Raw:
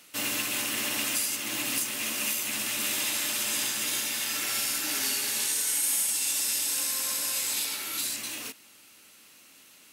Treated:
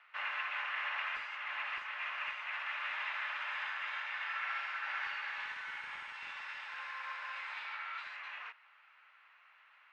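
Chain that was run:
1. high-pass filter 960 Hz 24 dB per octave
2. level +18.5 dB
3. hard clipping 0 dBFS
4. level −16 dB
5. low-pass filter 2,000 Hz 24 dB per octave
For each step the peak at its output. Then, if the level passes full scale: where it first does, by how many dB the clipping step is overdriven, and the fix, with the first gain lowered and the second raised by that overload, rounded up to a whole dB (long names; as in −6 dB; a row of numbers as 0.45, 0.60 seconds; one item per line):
−15.0, +3.5, 0.0, −16.0, −25.0 dBFS
step 2, 3.5 dB
step 2 +14.5 dB, step 4 −12 dB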